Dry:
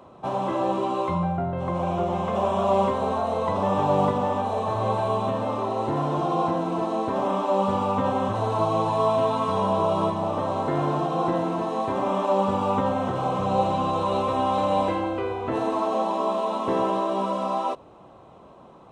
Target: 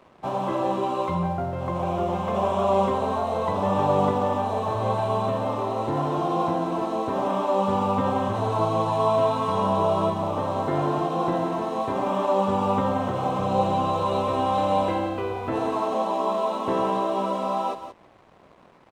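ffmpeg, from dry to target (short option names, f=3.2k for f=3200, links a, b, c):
-af "aecho=1:1:175:0.299,aeval=exprs='sgn(val(0))*max(abs(val(0))-0.00266,0)':c=same"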